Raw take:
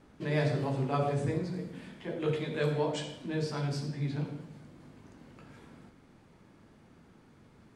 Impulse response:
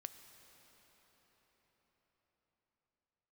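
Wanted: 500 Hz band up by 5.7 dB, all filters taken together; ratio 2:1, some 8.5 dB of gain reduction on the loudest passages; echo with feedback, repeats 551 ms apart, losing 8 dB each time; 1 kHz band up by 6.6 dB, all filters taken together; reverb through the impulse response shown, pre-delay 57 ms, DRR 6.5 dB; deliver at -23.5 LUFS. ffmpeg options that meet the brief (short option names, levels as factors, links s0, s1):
-filter_complex "[0:a]equalizer=f=500:t=o:g=5,equalizer=f=1000:t=o:g=7,acompressor=threshold=0.0158:ratio=2,aecho=1:1:551|1102|1653|2204|2755:0.398|0.159|0.0637|0.0255|0.0102,asplit=2[s0][s1];[1:a]atrim=start_sample=2205,adelay=57[s2];[s1][s2]afir=irnorm=-1:irlink=0,volume=0.841[s3];[s0][s3]amix=inputs=2:normalize=0,volume=3.76"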